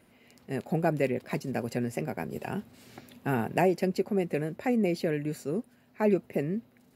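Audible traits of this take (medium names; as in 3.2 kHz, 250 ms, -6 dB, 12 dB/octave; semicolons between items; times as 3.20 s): noise floor -63 dBFS; spectral tilt -5.0 dB/octave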